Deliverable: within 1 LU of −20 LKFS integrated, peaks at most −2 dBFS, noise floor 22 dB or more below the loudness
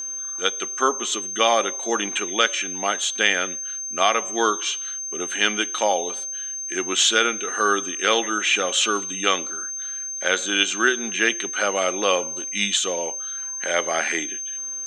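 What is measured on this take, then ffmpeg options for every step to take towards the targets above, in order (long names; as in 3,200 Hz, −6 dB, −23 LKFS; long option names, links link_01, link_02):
interfering tone 6,300 Hz; level of the tone −28 dBFS; integrated loudness −22.0 LKFS; sample peak −3.0 dBFS; target loudness −20.0 LKFS
→ -af "bandreject=frequency=6300:width=30"
-af "volume=2dB,alimiter=limit=-2dB:level=0:latency=1"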